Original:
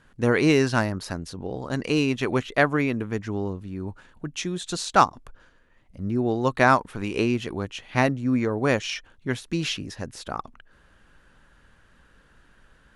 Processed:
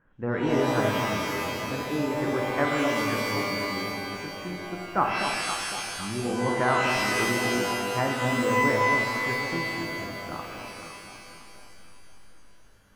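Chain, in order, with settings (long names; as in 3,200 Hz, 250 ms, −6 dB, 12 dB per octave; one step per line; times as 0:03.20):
low-pass filter 1,900 Hz 24 dB per octave
mains-hum notches 50/100 Hz
delay that swaps between a low-pass and a high-pass 254 ms, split 960 Hz, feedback 66%, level −4.5 dB
reverb with rising layers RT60 1.8 s, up +12 semitones, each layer −2 dB, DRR 1.5 dB
level −8 dB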